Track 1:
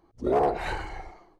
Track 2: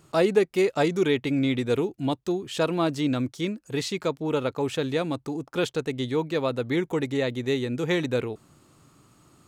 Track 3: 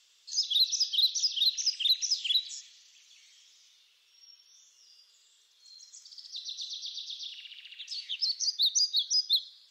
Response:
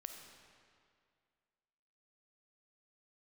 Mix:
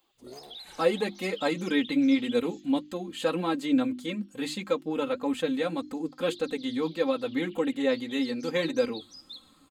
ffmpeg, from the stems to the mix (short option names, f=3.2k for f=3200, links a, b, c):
-filter_complex "[0:a]acrossover=split=270|3000[a][b][c];[b]acompressor=threshold=-41dB:ratio=3[d];[a][d][c]amix=inputs=3:normalize=0,aemphasis=mode=production:type=riaa,volume=-4.5dB[e];[1:a]bandreject=f=50:t=h:w=6,bandreject=f=100:t=h:w=6,bandreject=f=150:t=h:w=6,bandreject=f=200:t=h:w=6,bandreject=f=250:t=h:w=6,bandreject=f=300:t=h:w=6,bandreject=f=350:t=h:w=6,aecho=1:1:3.8:0.96,adelay=650,volume=-1dB[f];[2:a]aemphasis=mode=reproduction:type=75kf,volume=-0.5dB[g];[e][g]amix=inputs=2:normalize=0,acompressor=threshold=-37dB:ratio=5,volume=0dB[h];[f][h]amix=inputs=2:normalize=0,equalizer=f=5.6k:t=o:w=0.22:g=-14.5,flanger=delay=3.7:depth=4.2:regen=50:speed=1.7:shape=sinusoidal"